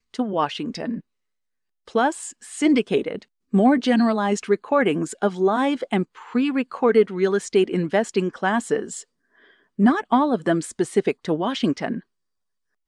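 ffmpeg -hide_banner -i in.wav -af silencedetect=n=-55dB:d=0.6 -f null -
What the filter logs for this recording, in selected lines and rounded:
silence_start: 1.01
silence_end: 1.87 | silence_duration: 0.86
silence_start: 12.03
silence_end: 12.88 | silence_duration: 0.85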